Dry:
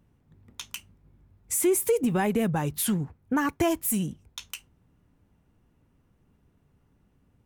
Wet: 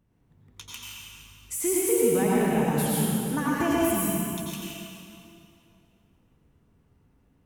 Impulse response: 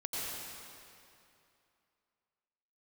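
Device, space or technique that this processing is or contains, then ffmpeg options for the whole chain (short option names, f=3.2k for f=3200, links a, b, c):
stairwell: -filter_complex "[1:a]atrim=start_sample=2205[a];[0:a][a]afir=irnorm=-1:irlink=0,volume=-2dB"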